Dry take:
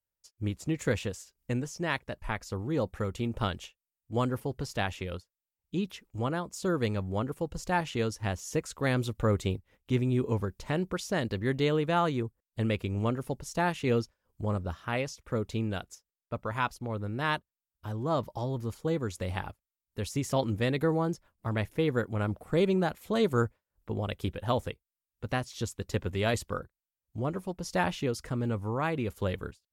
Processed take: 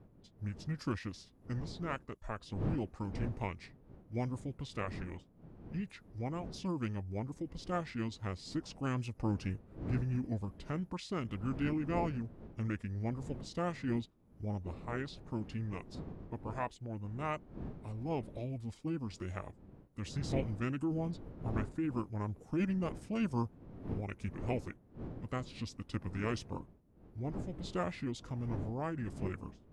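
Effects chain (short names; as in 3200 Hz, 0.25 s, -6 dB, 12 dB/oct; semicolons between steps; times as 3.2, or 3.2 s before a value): wind noise 340 Hz -40 dBFS; formant shift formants -6 st; gain -7.5 dB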